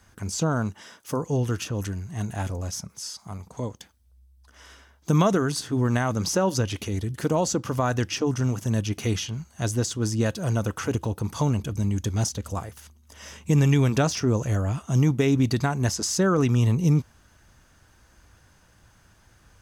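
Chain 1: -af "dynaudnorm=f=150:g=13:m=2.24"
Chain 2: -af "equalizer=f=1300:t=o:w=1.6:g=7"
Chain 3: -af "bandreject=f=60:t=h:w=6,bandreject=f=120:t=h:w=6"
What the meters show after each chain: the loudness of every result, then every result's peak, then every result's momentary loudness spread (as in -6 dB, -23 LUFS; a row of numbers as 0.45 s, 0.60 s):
-19.0 LUFS, -24.0 LUFS, -25.5 LUFS; -3.5 dBFS, -6.0 dBFS, -9.0 dBFS; 13 LU, 13 LU, 13 LU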